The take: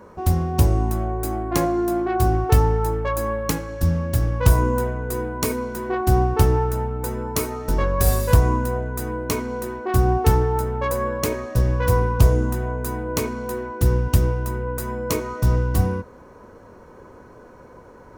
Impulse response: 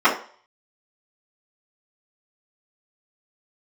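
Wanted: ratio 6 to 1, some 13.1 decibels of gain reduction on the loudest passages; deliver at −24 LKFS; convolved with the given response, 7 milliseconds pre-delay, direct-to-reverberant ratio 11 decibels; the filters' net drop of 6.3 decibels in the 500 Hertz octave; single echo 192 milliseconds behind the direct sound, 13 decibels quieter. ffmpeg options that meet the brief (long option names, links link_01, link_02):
-filter_complex "[0:a]equalizer=frequency=500:width_type=o:gain=-8,acompressor=threshold=-24dB:ratio=6,aecho=1:1:192:0.224,asplit=2[link_01][link_02];[1:a]atrim=start_sample=2205,adelay=7[link_03];[link_02][link_03]afir=irnorm=-1:irlink=0,volume=-33.5dB[link_04];[link_01][link_04]amix=inputs=2:normalize=0,volume=5dB"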